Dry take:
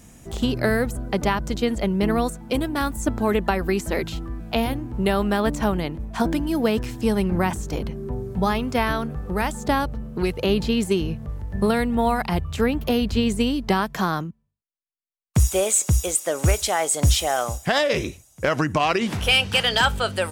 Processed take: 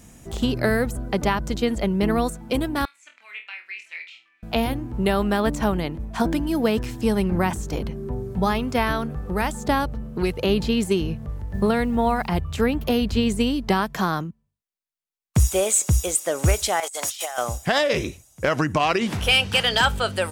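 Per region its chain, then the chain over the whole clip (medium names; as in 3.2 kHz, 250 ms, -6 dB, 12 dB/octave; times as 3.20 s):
2.85–4.43 s: ladder band-pass 2.5 kHz, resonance 75% + flutter echo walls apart 4.2 m, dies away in 0.26 s
11.54–12.35 s: treble shelf 4.9 kHz -7 dB + word length cut 10-bit, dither triangular
16.80–17.38 s: high-pass 820 Hz + compressor with a negative ratio -29 dBFS, ratio -0.5
whole clip: none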